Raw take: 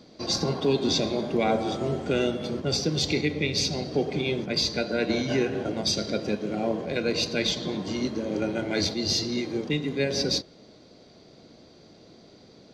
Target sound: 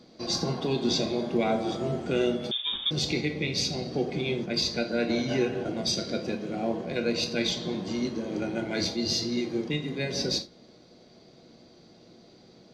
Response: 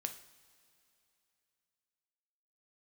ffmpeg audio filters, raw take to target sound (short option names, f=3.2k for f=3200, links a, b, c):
-filter_complex "[1:a]atrim=start_sample=2205,afade=t=out:st=0.18:d=0.01,atrim=end_sample=8379,asetrate=66150,aresample=44100[a];[0:a][a]afir=irnorm=-1:irlink=0,asettb=1/sr,asplit=3[b][c][d];[b]atrim=end=2.514[e];[c]atrim=start=2.51:end=2.91,asetpts=PTS-STARTPTS,afade=t=in:d=0.004:c=qsin,afade=t=out:st=0.396:d=0.004:c=qsin,lowpass=f=3.2k:t=q:w=0.5098,lowpass=f=3.2k:t=q:w=0.6013,lowpass=f=3.2k:t=q:w=0.9,lowpass=f=3.2k:t=q:w=2.563,afreqshift=-3800[f];[d]atrim=start=2.906[g];[e][f]acrossfade=d=0.004:c1=hsin:c2=qsin[h];[h][g]acrossfade=d=0.004:c1=qsin:c2=hsin,volume=2.5dB"